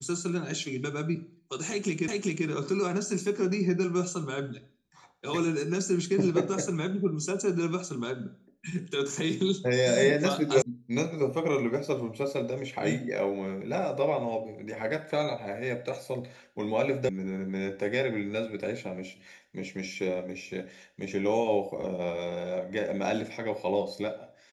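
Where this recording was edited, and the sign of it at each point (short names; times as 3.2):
2.08 repeat of the last 0.39 s
10.62 sound cut off
17.09 sound cut off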